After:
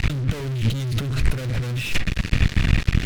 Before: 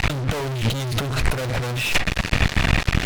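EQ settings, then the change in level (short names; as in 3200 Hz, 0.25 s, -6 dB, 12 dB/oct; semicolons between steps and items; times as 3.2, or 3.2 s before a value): bell 790 Hz -14 dB 1.9 oct; high shelf 2600 Hz -9 dB; +2.5 dB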